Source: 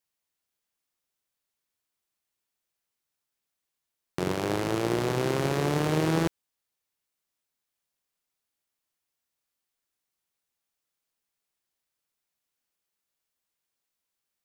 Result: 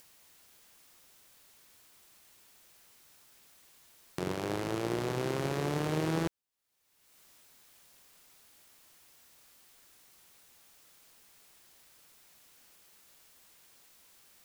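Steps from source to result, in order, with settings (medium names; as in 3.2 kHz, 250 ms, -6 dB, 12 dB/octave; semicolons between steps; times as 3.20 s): upward compressor, threshold -31 dBFS; trim -6 dB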